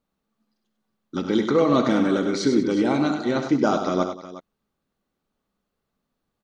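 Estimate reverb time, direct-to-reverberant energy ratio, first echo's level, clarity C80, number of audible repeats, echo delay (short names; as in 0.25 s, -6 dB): none, none, -12.5 dB, none, 4, 66 ms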